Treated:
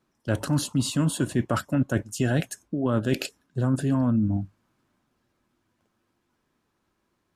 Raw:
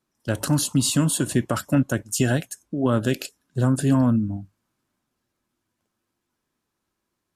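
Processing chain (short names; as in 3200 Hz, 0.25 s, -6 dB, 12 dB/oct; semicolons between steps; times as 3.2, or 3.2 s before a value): reverse; compressor 4:1, threshold -28 dBFS, peak gain reduction 12 dB; reverse; high shelf 4900 Hz -10.5 dB; gain +6.5 dB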